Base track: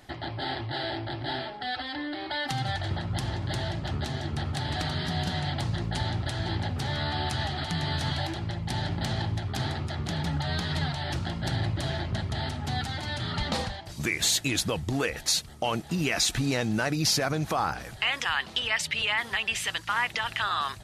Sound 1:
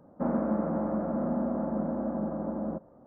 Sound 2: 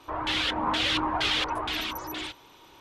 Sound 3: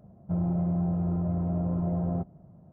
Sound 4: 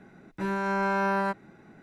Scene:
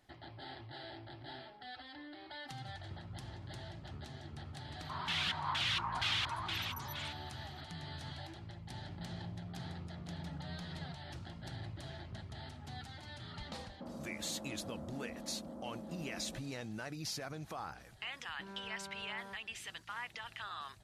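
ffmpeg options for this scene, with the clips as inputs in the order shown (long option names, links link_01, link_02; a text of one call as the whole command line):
ffmpeg -i bed.wav -i cue0.wav -i cue1.wav -i cue2.wav -i cue3.wav -filter_complex "[0:a]volume=-16.5dB[link_01];[2:a]highpass=frequency=870:width=0.5412,highpass=frequency=870:width=1.3066[link_02];[3:a]acompressor=threshold=-39dB:ratio=6:attack=3.2:release=140:knee=1:detection=peak[link_03];[1:a]acompressor=threshold=-39dB:ratio=6:attack=3.2:release=140:knee=1:detection=peak[link_04];[4:a]alimiter=level_in=3.5dB:limit=-24dB:level=0:latency=1:release=71,volume=-3.5dB[link_05];[link_02]atrim=end=2.8,asetpts=PTS-STARTPTS,volume=-8dB,afade=type=in:duration=0.004:curve=hsin,afade=type=out:start_time=2.796:duration=0.004:curve=hsin,adelay=212121S[link_06];[link_03]atrim=end=2.72,asetpts=PTS-STARTPTS,volume=-8.5dB,afade=type=in:duration=0.004:curve=hsin,afade=type=out:start_time=2.716:duration=0.004:curve=hsin,adelay=8710[link_07];[link_04]atrim=end=3.06,asetpts=PTS-STARTPTS,volume=-5.5dB,afade=type=in:duration=0.004:curve=hsin,afade=type=out:start_time=3.056:duration=0.004:curve=hsin,adelay=13610[link_08];[link_05]atrim=end=1.82,asetpts=PTS-STARTPTS,volume=-16dB,afade=type=in:duration=0.004:curve=hsin,afade=type=out:start_time=1.816:duration=0.004:curve=hsin,adelay=18010[link_09];[link_01][link_06][link_07][link_08][link_09]amix=inputs=5:normalize=0" out.wav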